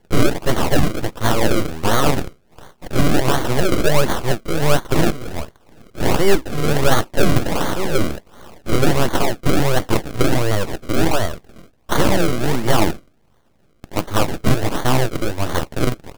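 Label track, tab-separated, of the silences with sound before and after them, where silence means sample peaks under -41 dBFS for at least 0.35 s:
12.990000	13.840000	silence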